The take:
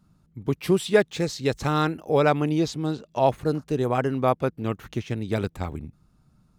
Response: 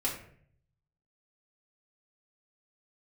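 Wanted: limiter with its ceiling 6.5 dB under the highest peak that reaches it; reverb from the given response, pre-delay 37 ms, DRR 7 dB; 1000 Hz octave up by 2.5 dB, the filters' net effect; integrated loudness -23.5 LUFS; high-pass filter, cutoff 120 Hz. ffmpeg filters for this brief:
-filter_complex "[0:a]highpass=120,equalizer=f=1k:t=o:g=3.5,alimiter=limit=-11dB:level=0:latency=1,asplit=2[a][b];[1:a]atrim=start_sample=2205,adelay=37[c];[b][c]afir=irnorm=-1:irlink=0,volume=-12.5dB[d];[a][d]amix=inputs=2:normalize=0,volume=1.5dB"

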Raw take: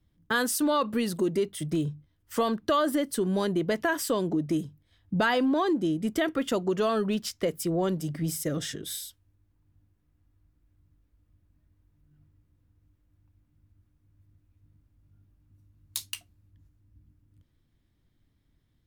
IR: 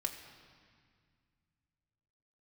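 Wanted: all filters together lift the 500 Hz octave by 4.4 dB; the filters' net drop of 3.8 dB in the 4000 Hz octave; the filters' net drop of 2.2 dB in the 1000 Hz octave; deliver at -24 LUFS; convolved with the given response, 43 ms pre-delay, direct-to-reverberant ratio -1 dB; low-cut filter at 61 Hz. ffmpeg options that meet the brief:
-filter_complex "[0:a]highpass=61,equalizer=f=500:t=o:g=7,equalizer=f=1k:t=o:g=-5,equalizer=f=4k:t=o:g=-5,asplit=2[a][b];[1:a]atrim=start_sample=2205,adelay=43[c];[b][c]afir=irnorm=-1:irlink=0,volume=0dB[d];[a][d]amix=inputs=2:normalize=0,volume=-1.5dB"

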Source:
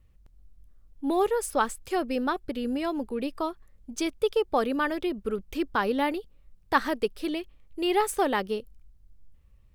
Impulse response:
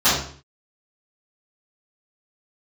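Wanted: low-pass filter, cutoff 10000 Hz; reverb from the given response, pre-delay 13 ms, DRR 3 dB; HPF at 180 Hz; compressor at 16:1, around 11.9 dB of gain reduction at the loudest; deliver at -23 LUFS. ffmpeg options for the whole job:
-filter_complex "[0:a]highpass=180,lowpass=10k,acompressor=threshold=-29dB:ratio=16,asplit=2[a][b];[1:a]atrim=start_sample=2205,adelay=13[c];[b][c]afir=irnorm=-1:irlink=0,volume=-24.5dB[d];[a][d]amix=inputs=2:normalize=0,volume=10.5dB"

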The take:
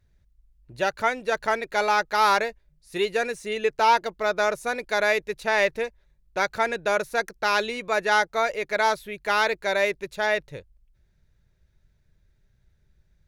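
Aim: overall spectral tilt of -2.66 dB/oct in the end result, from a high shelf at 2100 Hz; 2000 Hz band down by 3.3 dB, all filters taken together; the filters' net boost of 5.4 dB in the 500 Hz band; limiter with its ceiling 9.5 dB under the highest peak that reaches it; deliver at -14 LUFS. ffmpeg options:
-af "equalizer=f=500:t=o:g=7,equalizer=f=2k:t=o:g=-8.5,highshelf=f=2.1k:g=6,volume=12.5dB,alimiter=limit=-3.5dB:level=0:latency=1"

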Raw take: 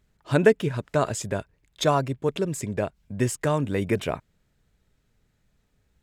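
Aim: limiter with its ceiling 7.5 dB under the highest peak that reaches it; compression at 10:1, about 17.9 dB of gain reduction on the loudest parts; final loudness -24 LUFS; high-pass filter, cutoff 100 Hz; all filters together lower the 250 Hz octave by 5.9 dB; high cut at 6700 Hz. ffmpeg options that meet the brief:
-af "highpass=100,lowpass=6.7k,equalizer=f=250:t=o:g=-8.5,acompressor=threshold=-32dB:ratio=10,volume=16dB,alimiter=limit=-11dB:level=0:latency=1"

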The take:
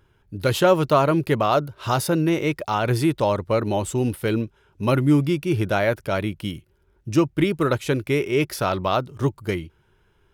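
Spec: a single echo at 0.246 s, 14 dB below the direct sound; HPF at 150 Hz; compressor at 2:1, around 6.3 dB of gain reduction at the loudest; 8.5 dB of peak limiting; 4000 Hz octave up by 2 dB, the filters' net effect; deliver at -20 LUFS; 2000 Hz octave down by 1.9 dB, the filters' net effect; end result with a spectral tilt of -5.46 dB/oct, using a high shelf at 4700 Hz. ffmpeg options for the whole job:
-af "highpass=150,equalizer=f=2k:t=o:g=-3.5,equalizer=f=4k:t=o:g=5.5,highshelf=f=4.7k:g=-3.5,acompressor=threshold=-24dB:ratio=2,alimiter=limit=-18dB:level=0:latency=1,aecho=1:1:246:0.2,volume=9.5dB"

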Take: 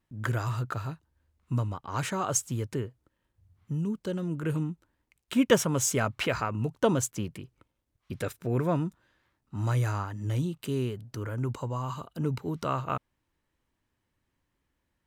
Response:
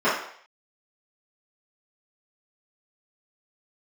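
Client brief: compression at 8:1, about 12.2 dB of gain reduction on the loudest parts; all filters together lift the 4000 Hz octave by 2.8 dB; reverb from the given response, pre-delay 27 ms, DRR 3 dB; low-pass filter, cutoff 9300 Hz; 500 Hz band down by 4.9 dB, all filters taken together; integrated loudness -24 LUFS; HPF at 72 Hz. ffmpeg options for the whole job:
-filter_complex "[0:a]highpass=72,lowpass=9.3k,equalizer=f=500:t=o:g=-6,equalizer=f=4k:t=o:g=4.5,acompressor=threshold=-32dB:ratio=8,asplit=2[a][b];[1:a]atrim=start_sample=2205,adelay=27[c];[b][c]afir=irnorm=-1:irlink=0,volume=-22.5dB[d];[a][d]amix=inputs=2:normalize=0,volume=12.5dB"

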